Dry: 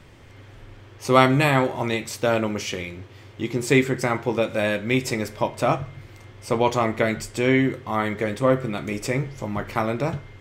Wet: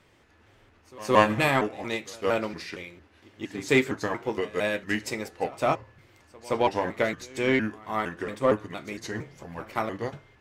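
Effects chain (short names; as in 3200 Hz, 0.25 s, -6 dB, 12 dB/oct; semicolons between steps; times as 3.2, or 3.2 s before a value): trilling pitch shifter -3.5 st, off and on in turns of 0.23 s; low shelf 160 Hz -11.5 dB; in parallel at -4 dB: soft clip -19 dBFS, distortion -9 dB; on the sum: pre-echo 0.17 s -16 dB; upward expander 1.5:1, over -32 dBFS; gain -2.5 dB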